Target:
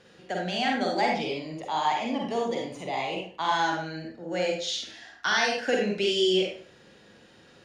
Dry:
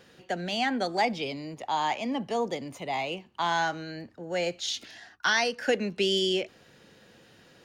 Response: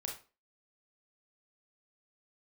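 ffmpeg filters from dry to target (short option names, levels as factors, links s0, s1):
-filter_complex "[0:a]lowpass=8700[s0];[1:a]atrim=start_sample=2205,asetrate=31311,aresample=44100[s1];[s0][s1]afir=irnorm=-1:irlink=0"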